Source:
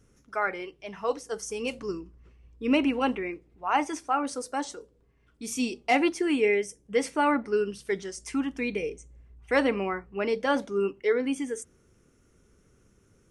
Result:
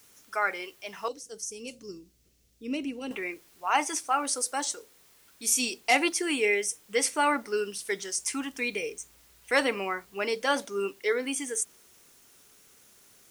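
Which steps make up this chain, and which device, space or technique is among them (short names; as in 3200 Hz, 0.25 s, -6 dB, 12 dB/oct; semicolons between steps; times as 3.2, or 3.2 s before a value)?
turntable without a phono preamp (RIAA curve recording; white noise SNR 29 dB); 1.08–3.11 EQ curve 210 Hz 0 dB, 560 Hz -9 dB, 960 Hz -21 dB, 6100 Hz -7 dB, 10000 Hz -12 dB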